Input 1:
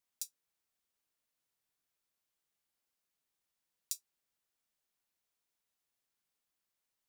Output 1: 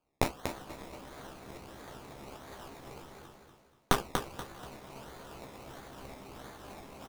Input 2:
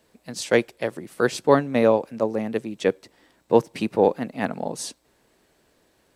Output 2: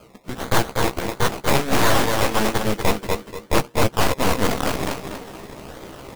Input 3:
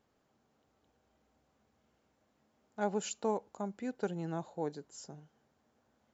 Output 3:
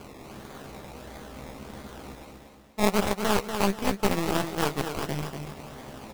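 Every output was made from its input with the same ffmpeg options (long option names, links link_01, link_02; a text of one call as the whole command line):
ffmpeg -i in.wav -filter_complex "[0:a]acrusher=bits=3:mode=log:mix=0:aa=0.000001,acrossover=split=880[link_01][link_02];[link_01]aeval=exprs='val(0)*(1-0.5/2+0.5/2*cos(2*PI*2.9*n/s))':channel_layout=same[link_03];[link_02]aeval=exprs='val(0)*(1-0.5/2-0.5/2*cos(2*PI*2.9*n/s))':channel_layout=same[link_04];[link_03][link_04]amix=inputs=2:normalize=0,acrusher=samples=23:mix=1:aa=0.000001:lfo=1:lforange=13.8:lforate=1.5,areverse,acompressor=mode=upward:threshold=-24dB:ratio=2.5,areverse,asplit=2[link_05][link_06];[link_06]adelay=15,volume=-6dB[link_07];[link_05][link_07]amix=inputs=2:normalize=0,acontrast=75,aecho=1:1:240|480|720|960:0.501|0.185|0.0686|0.0254,aeval=exprs='0.891*(cos(1*acos(clip(val(0)/0.891,-1,1)))-cos(1*PI/2))+0.398*(cos(3*acos(clip(val(0)/0.891,-1,1)))-cos(3*PI/2))+0.0355*(cos(7*acos(clip(val(0)/0.891,-1,1)))-cos(7*PI/2))+0.158*(cos(8*acos(clip(val(0)/0.891,-1,1)))-cos(8*PI/2))':channel_layout=same,alimiter=level_in=7dB:limit=-1dB:release=50:level=0:latency=1,volume=-6.5dB" out.wav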